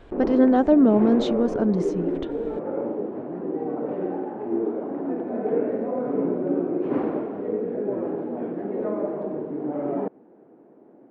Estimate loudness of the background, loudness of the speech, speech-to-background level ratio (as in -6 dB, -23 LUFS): -27.5 LUFS, -20.0 LUFS, 7.5 dB